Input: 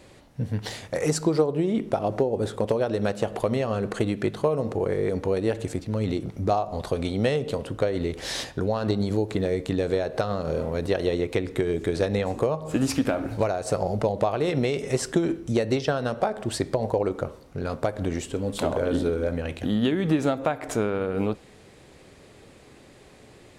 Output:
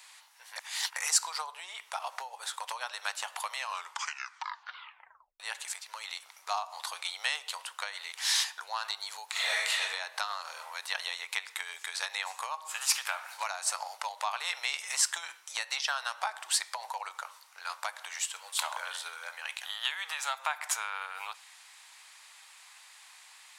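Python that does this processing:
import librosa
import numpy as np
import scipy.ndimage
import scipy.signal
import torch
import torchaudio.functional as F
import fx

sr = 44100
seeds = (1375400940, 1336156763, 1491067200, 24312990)

y = fx.reverb_throw(x, sr, start_s=9.31, length_s=0.49, rt60_s=0.9, drr_db=-10.5)
y = fx.edit(y, sr, fx.reverse_span(start_s=0.56, length_s=0.4),
    fx.tape_stop(start_s=3.57, length_s=1.83), tone=tone)
y = scipy.signal.sosfilt(scipy.signal.ellip(4, 1.0, 70, 900.0, 'highpass', fs=sr, output='sos'), y)
y = fx.high_shelf(y, sr, hz=3900.0, db=9.0)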